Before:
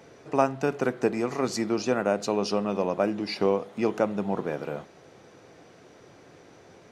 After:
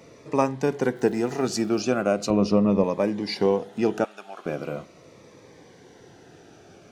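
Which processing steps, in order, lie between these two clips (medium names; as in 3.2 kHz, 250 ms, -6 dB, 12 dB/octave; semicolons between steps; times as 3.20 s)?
0.95–1.79 s: crackle 390 per s -46 dBFS; 2.30–2.84 s: tilt EQ -3 dB/octave; 4.04–4.46 s: high-pass 1.1 kHz 12 dB/octave; Shepard-style phaser falling 0.4 Hz; trim +3.5 dB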